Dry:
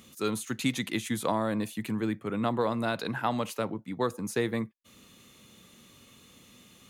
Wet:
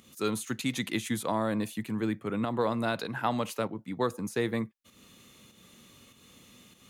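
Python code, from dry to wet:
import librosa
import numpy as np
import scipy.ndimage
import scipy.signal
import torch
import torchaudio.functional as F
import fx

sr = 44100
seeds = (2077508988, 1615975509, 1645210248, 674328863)

y = fx.volume_shaper(x, sr, bpm=98, per_beat=1, depth_db=-7, release_ms=224.0, shape='fast start')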